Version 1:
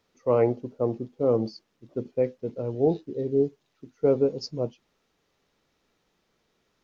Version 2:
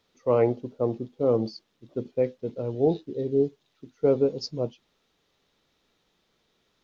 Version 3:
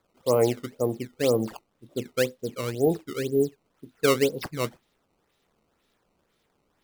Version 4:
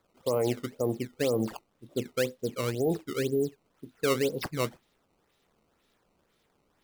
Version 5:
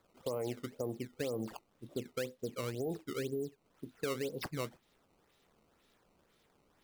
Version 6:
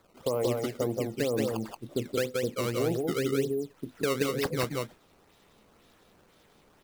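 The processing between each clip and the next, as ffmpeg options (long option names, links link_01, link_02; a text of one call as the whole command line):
ffmpeg -i in.wav -af "equalizer=frequency=3600:width_type=o:width=0.55:gain=6.5" out.wav
ffmpeg -i in.wav -af "acrusher=samples=15:mix=1:aa=0.000001:lfo=1:lforange=24:lforate=2" out.wav
ffmpeg -i in.wav -af "alimiter=limit=-19dB:level=0:latency=1:release=55" out.wav
ffmpeg -i in.wav -af "acompressor=threshold=-39dB:ratio=2.5" out.wav
ffmpeg -i in.wav -af "aecho=1:1:169|179:0.211|0.708,volume=8dB" out.wav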